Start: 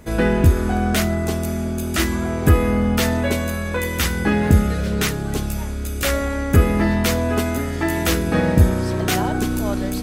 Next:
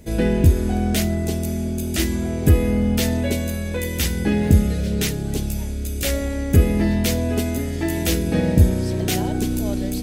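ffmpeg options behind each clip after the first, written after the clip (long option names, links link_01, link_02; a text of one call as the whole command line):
ffmpeg -i in.wav -af "equalizer=frequency=1200:width_type=o:width=1.1:gain=-14.5" out.wav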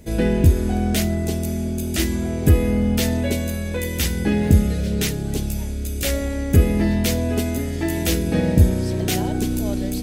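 ffmpeg -i in.wav -af anull out.wav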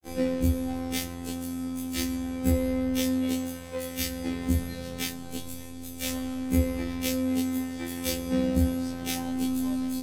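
ffmpeg -i in.wav -af "aeval=exprs='sgn(val(0))*max(abs(val(0))-0.0224,0)':channel_layout=same,afftfilt=real='hypot(re,im)*cos(PI*b)':imag='0':win_size=2048:overlap=0.75,afftfilt=real='re*1.73*eq(mod(b,3),0)':imag='im*1.73*eq(mod(b,3),0)':win_size=2048:overlap=0.75" out.wav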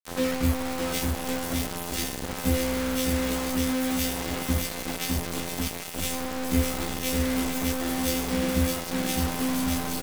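ffmpeg -i in.wav -filter_complex "[0:a]asplit=2[link_01][link_02];[link_02]aecho=0:1:610|1098|1488|1801|2051:0.631|0.398|0.251|0.158|0.1[link_03];[link_01][link_03]amix=inputs=2:normalize=0,acrusher=bits=4:mix=0:aa=0.000001" out.wav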